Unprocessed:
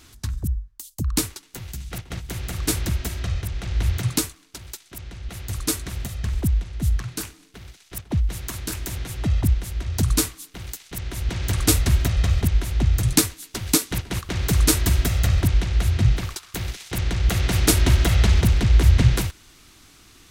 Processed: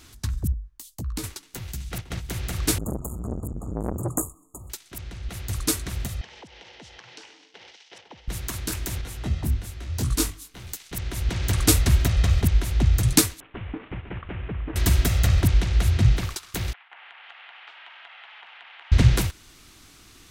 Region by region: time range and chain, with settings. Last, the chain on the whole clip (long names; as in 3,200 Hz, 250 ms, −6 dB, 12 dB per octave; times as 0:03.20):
0:00.52–0:01.24: high-shelf EQ 4,300 Hz −5.5 dB + downward compressor 2.5 to 1, threshold −32 dBFS + double-tracking delay 16 ms −8.5 dB
0:02.78–0:04.70: linear-phase brick-wall band-stop 1,300–6,600 Hz + saturating transformer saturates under 790 Hz
0:06.21–0:08.28: loudspeaker in its box 420–5,700 Hz, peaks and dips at 490 Hz +8 dB, 850 Hz +9 dB, 1,200 Hz −5 dB, 2,000 Hz +4 dB, 3,000 Hz +7 dB, 5,600 Hz +4 dB + downward compressor 5 to 1, threshold −42 dBFS
0:09.01–0:10.73: mains-hum notches 50/100/150/200/250/300/350/400 Hz + micro pitch shift up and down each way 27 cents
0:13.40–0:14.76: variable-slope delta modulation 16 kbit/s + downward compressor 3 to 1, threshold −31 dBFS
0:16.73–0:18.92: low-pass that shuts in the quiet parts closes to 1,500 Hz, open at −10 dBFS + Chebyshev band-pass filter 790–3,100 Hz, order 3 + downward compressor 10 to 1, threshold −42 dBFS
whole clip: no processing